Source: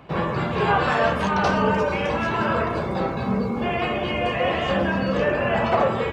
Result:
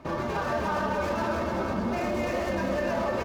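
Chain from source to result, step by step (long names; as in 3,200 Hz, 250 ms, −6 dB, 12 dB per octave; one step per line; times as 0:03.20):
running median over 15 samples
comb filter 3.3 ms, depth 51%
brickwall limiter −19.5 dBFS, peak gain reduction 11 dB
phase-vocoder stretch with locked phases 0.53×
repeating echo 303 ms, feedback 51%, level −5 dB
level −1 dB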